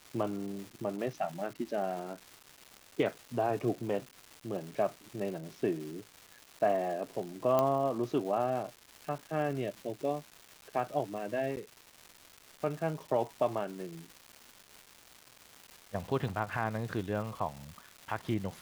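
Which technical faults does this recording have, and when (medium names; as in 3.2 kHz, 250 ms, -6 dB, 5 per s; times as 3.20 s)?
crackle 560 per s -41 dBFS
7.59 s: pop -15 dBFS
11.56–11.57 s: dropout 9.6 ms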